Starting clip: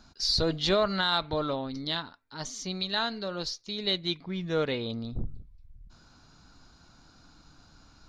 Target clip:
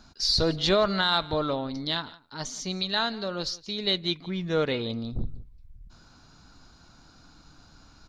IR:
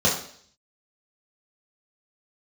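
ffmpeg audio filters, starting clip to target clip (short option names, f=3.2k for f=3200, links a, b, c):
-af "aecho=1:1:170:0.0891,volume=2.5dB"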